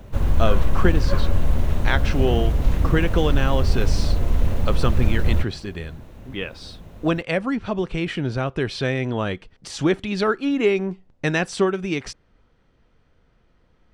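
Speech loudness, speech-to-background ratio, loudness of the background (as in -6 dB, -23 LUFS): -25.0 LUFS, -1.0 dB, -24.0 LUFS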